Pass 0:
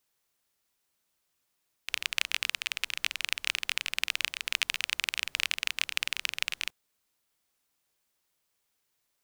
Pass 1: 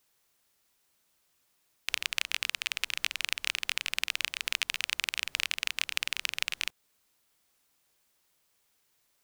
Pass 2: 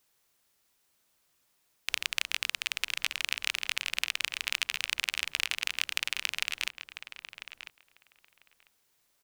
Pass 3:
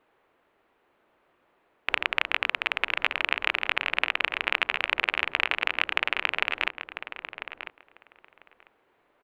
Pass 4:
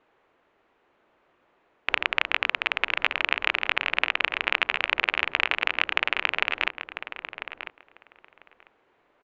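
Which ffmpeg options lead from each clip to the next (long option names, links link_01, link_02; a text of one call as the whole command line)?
ffmpeg -i in.wav -af "acompressor=threshold=-33dB:ratio=2.5,volume=5.5dB" out.wav
ffmpeg -i in.wav -filter_complex "[0:a]asplit=2[link_01][link_02];[link_02]adelay=996,lowpass=frequency=2200:poles=1,volume=-8.5dB,asplit=2[link_03][link_04];[link_04]adelay=996,lowpass=frequency=2200:poles=1,volume=0.16[link_05];[link_01][link_03][link_05]amix=inputs=3:normalize=0" out.wav
ffmpeg -i in.wav -af "firequalizer=gain_entry='entry(140,0);entry(340,12);entry(2700,-1);entry(5300,-25)':delay=0.05:min_phase=1,volume=6dB" out.wav
ffmpeg -i in.wav -af "aresample=16000,aresample=44100,volume=1.5dB" out.wav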